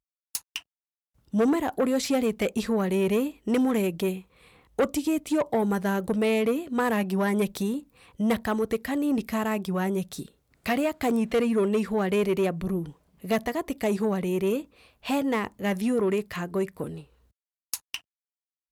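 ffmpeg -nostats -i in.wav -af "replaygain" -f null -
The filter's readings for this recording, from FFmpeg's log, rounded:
track_gain = +7.6 dB
track_peak = 0.117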